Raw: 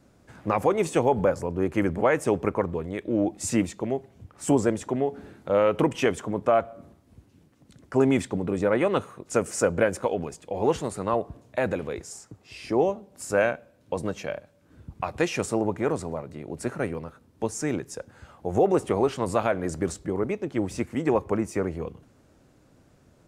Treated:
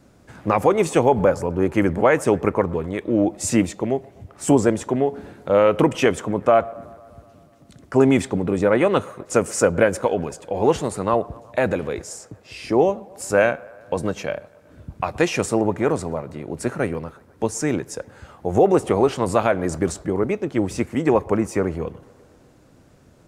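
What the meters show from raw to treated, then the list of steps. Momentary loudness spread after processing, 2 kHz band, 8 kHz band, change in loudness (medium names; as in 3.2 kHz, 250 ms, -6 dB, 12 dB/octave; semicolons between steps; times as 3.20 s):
13 LU, +5.5 dB, +5.5 dB, +5.5 dB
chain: feedback echo behind a band-pass 124 ms, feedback 71%, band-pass 910 Hz, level -23 dB; trim +5.5 dB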